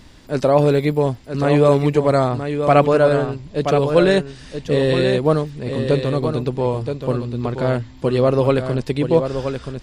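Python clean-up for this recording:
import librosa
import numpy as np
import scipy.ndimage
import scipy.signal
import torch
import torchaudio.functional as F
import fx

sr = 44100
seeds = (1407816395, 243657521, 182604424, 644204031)

y = fx.fix_echo_inverse(x, sr, delay_ms=976, level_db=-7.5)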